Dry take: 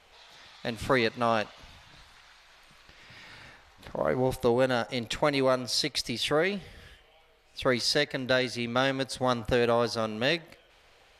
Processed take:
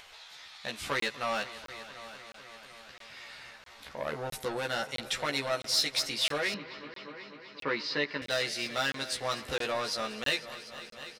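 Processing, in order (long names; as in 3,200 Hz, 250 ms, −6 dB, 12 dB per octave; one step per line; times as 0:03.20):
soft clipping −20.5 dBFS, distortion −14 dB
tilt shelving filter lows −7 dB, about 710 Hz
hard clipping −14.5 dBFS, distortion −33 dB
double-tracking delay 14 ms −2.5 dB
echo machine with several playback heads 247 ms, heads all three, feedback 60%, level −19 dB
upward compression, threshold −40 dBFS
0:06.54–0:08.22: loudspeaker in its box 150–3,900 Hz, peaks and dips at 170 Hz +8 dB, 290 Hz +7 dB, 420 Hz +4 dB, 710 Hz −8 dB, 1,000 Hz +9 dB, 3,400 Hz −7 dB
regular buffer underruns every 0.66 s, samples 1,024, zero, from 0:01.00
level −6 dB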